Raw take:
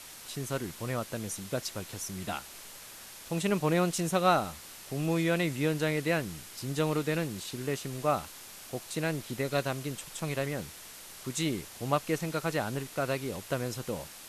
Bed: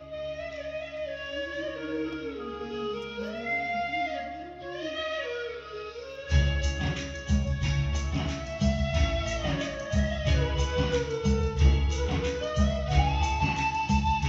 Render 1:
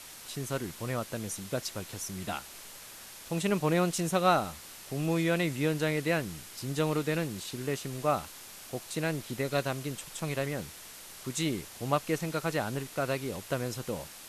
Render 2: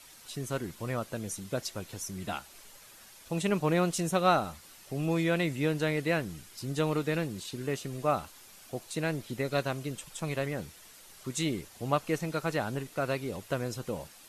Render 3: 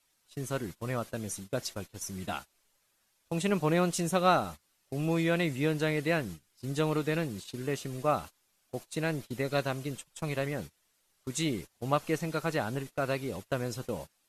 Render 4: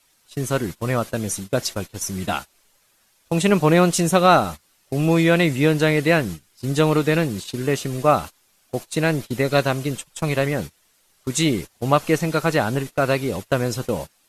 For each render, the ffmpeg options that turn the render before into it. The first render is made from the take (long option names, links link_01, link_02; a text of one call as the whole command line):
ffmpeg -i in.wav -af anull out.wav
ffmpeg -i in.wav -af "afftdn=noise_reduction=8:noise_floor=-48" out.wav
ffmpeg -i in.wav -af "agate=range=-20dB:threshold=-40dB:ratio=16:detection=peak" out.wav
ffmpeg -i in.wav -af "volume=11.5dB,alimiter=limit=-3dB:level=0:latency=1" out.wav